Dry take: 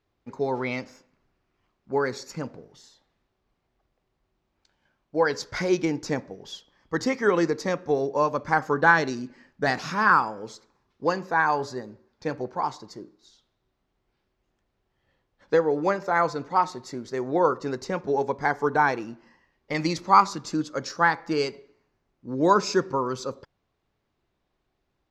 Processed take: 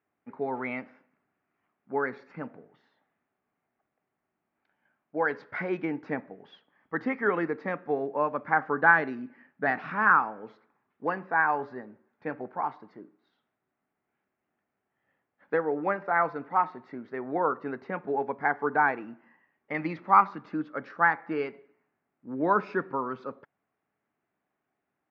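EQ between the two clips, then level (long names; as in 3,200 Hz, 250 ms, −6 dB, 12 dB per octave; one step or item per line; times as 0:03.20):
loudspeaker in its box 240–2,200 Hz, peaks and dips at 360 Hz −7 dB, 520 Hz −7 dB, 1,000 Hz −5 dB
0.0 dB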